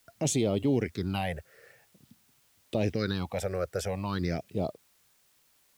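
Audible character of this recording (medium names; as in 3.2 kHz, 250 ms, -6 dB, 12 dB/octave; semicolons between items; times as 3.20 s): phasing stages 6, 0.48 Hz, lowest notch 240–1600 Hz; a quantiser's noise floor 12-bit, dither triangular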